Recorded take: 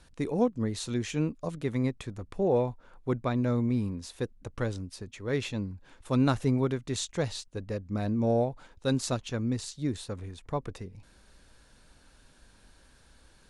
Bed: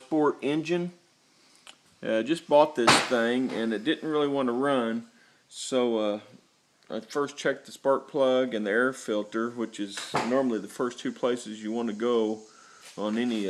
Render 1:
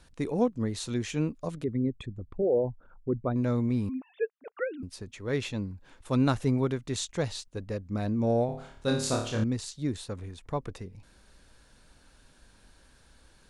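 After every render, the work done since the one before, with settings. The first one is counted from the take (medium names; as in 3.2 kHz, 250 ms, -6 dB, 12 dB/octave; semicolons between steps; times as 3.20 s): 1.64–3.36 s: resonances exaggerated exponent 2; 3.89–4.83 s: formants replaced by sine waves; 8.46–9.44 s: flutter echo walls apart 4.7 m, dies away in 0.53 s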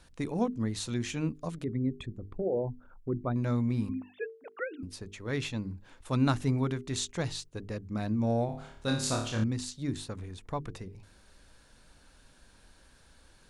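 hum notches 50/100/150/200/250/300/350/400/450 Hz; dynamic bell 480 Hz, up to -6 dB, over -43 dBFS, Q 1.7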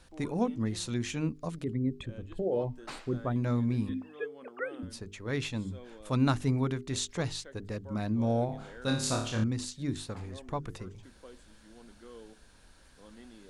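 add bed -24.5 dB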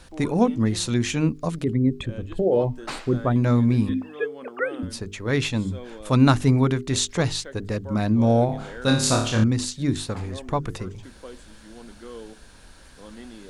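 trim +10 dB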